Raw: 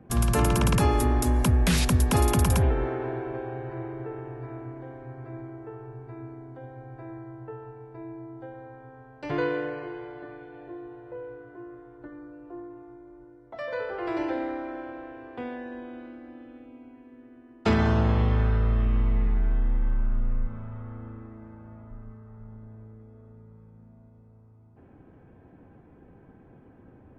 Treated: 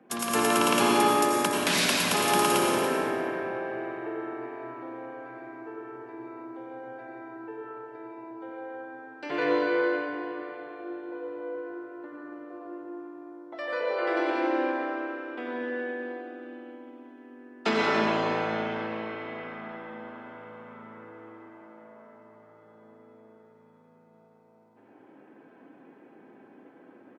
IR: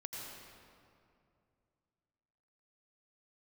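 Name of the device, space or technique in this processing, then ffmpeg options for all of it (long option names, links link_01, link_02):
stadium PA: -filter_complex "[0:a]highpass=frequency=230:width=0.5412,highpass=frequency=230:width=1.3066,equalizer=frequency=3200:width_type=o:width=2.8:gain=6,aecho=1:1:180.8|285.7:0.251|0.282[link_01];[1:a]atrim=start_sample=2205[link_02];[link_01][link_02]afir=irnorm=-1:irlink=0,volume=2dB"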